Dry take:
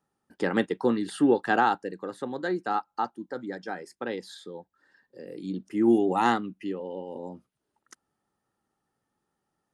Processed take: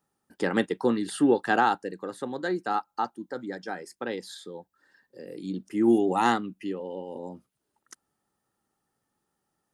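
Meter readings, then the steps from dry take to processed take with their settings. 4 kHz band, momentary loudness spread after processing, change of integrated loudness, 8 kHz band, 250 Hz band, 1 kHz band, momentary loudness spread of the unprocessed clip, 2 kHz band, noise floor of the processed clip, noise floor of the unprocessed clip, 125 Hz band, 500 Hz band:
+1.5 dB, 18 LU, 0.0 dB, can't be measured, 0.0 dB, 0.0 dB, 18 LU, +0.5 dB, −81 dBFS, −82 dBFS, 0.0 dB, 0.0 dB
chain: high-shelf EQ 6,300 Hz +7.5 dB

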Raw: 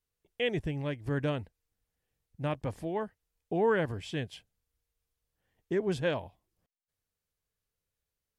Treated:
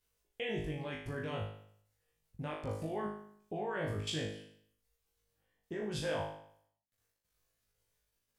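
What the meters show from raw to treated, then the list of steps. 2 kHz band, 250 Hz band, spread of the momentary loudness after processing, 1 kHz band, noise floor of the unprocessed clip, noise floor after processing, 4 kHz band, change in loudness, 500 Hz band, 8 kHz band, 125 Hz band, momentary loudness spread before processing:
−5.5 dB, −7.0 dB, 14 LU, −5.0 dB, below −85 dBFS, −84 dBFS, −1.0 dB, −6.5 dB, −7.5 dB, +4.5 dB, −5.5 dB, 13 LU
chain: output level in coarse steps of 22 dB
hum removal 51.45 Hz, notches 8
reverb reduction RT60 0.67 s
flutter between parallel walls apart 3.3 metres, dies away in 0.64 s
level +6 dB

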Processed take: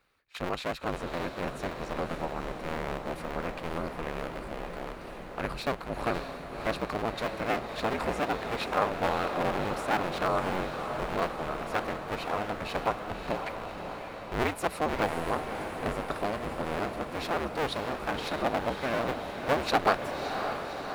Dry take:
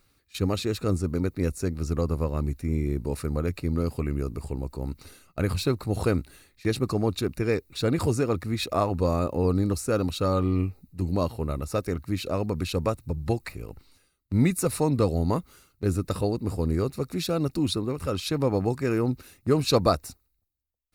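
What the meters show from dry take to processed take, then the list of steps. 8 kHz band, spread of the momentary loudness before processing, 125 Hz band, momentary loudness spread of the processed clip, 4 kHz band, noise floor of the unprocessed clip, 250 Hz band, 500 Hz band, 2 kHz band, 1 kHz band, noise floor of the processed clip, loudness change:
−9.5 dB, 8 LU, −14.0 dB, 8 LU, −3.0 dB, −71 dBFS, −9.0 dB, −4.0 dB, +6.0 dB, +4.0 dB, −42 dBFS, −5.0 dB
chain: sub-harmonics by changed cycles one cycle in 2, inverted
three-way crossover with the lows and the highs turned down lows −13 dB, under 490 Hz, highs −14 dB, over 3,300 Hz
on a send: feedback delay with all-pass diffusion 590 ms, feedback 69%, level −7 dB

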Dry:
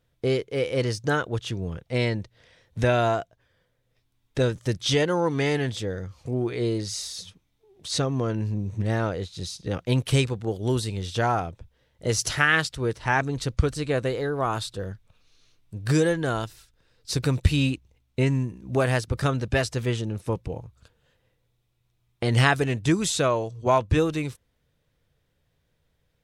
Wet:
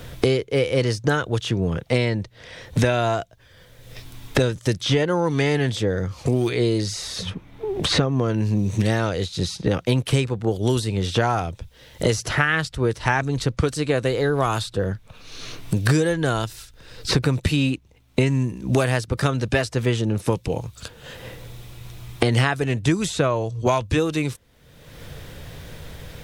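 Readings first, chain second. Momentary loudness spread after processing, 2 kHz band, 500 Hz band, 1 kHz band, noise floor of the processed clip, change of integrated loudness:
19 LU, +2.0 dB, +3.5 dB, +1.5 dB, −52 dBFS, +3.0 dB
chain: multiband upward and downward compressor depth 100%
level +3 dB

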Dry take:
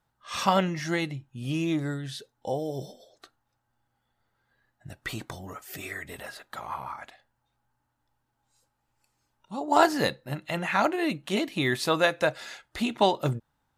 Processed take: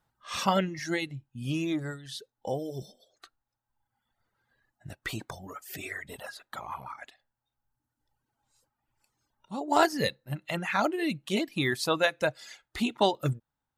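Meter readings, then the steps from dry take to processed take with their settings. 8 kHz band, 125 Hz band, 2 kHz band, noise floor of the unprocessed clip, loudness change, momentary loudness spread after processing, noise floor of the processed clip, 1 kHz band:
−1.0 dB, −2.0 dB, −2.0 dB, −78 dBFS, −2.5 dB, 16 LU, below −85 dBFS, −3.5 dB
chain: reverb reduction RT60 1.4 s
dynamic equaliser 920 Hz, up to −3 dB, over −37 dBFS, Q 0.71

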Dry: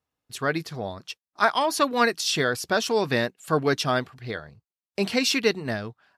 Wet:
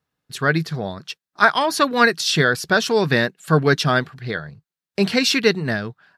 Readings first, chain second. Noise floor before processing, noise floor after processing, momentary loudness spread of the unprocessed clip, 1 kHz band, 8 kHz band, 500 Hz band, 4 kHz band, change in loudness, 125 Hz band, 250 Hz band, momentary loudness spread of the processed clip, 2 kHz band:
below −85 dBFS, below −85 dBFS, 13 LU, +4.5 dB, +3.0 dB, +4.5 dB, +5.0 dB, +5.5 dB, +10.0 dB, +6.5 dB, 13 LU, +8.0 dB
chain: graphic EQ with 15 bands 160 Hz +11 dB, 400 Hz +3 dB, 1,600 Hz +7 dB, 4,000 Hz +4 dB
level +2 dB

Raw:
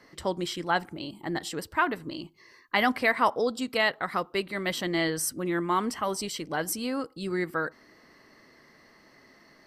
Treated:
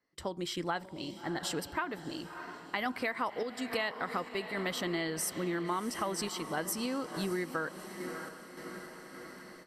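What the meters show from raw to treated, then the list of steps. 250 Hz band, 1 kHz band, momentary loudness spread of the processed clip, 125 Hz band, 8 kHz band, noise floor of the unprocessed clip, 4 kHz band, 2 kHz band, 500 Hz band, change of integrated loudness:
−5.0 dB, −8.0 dB, 11 LU, −4.5 dB, −4.0 dB, −58 dBFS, −5.5 dB, −8.0 dB, −6.5 dB, −7.0 dB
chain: on a send: feedback delay with all-pass diffusion 637 ms, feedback 59%, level −14 dB
on the sum: automatic gain control gain up to 7 dB
noise gate with hold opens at −36 dBFS
sample-and-hold tremolo 3.5 Hz, depth 55%
downward compressor 6 to 1, threshold −27 dBFS, peak gain reduction 14 dB
level −4 dB

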